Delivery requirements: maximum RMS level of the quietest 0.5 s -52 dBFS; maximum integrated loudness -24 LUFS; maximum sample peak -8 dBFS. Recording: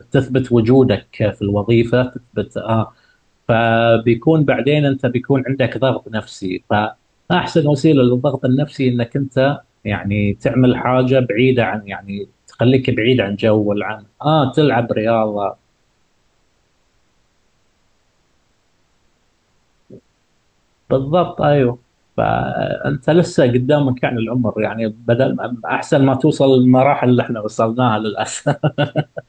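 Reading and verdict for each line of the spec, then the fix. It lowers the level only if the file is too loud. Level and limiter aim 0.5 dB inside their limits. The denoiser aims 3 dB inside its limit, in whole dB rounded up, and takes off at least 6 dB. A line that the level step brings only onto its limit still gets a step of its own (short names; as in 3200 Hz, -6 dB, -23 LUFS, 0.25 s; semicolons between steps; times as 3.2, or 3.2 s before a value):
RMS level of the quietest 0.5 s -61 dBFS: OK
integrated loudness -16.0 LUFS: fail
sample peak -2.0 dBFS: fail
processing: gain -8.5 dB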